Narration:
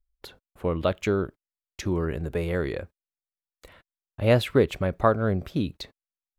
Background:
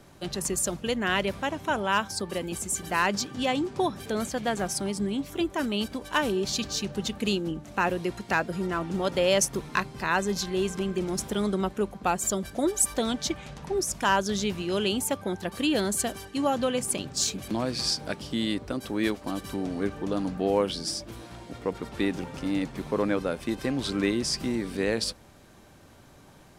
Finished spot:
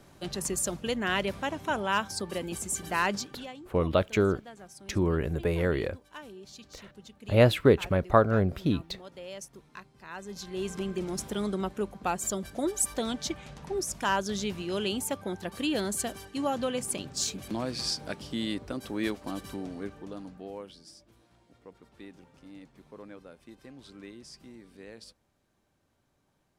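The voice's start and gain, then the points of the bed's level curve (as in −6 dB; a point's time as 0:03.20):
3.10 s, 0.0 dB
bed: 0:03.12 −2.5 dB
0:03.58 −19.5 dB
0:10.01 −19.5 dB
0:10.73 −4 dB
0:19.41 −4 dB
0:20.85 −20.5 dB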